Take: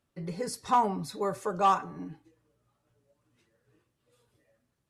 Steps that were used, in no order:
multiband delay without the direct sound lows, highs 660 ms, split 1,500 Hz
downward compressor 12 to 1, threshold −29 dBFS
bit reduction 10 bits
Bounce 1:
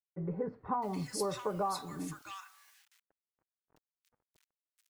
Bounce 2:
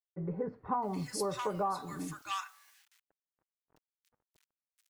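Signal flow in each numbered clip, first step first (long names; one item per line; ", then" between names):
downward compressor, then bit reduction, then multiband delay without the direct sound
bit reduction, then multiband delay without the direct sound, then downward compressor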